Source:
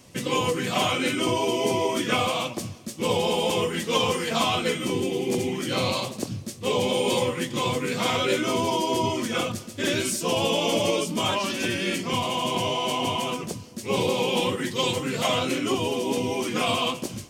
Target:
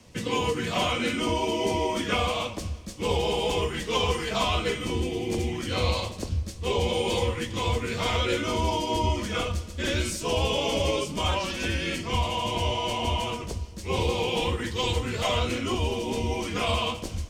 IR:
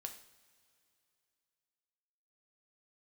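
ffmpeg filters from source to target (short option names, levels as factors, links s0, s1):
-filter_complex "[0:a]afreqshift=-22,asubboost=boost=10.5:cutoff=51,asplit=2[s0][s1];[1:a]atrim=start_sample=2205,lowpass=8100,lowshelf=f=120:g=8[s2];[s1][s2]afir=irnorm=-1:irlink=0,volume=1.5[s3];[s0][s3]amix=inputs=2:normalize=0,volume=0.422"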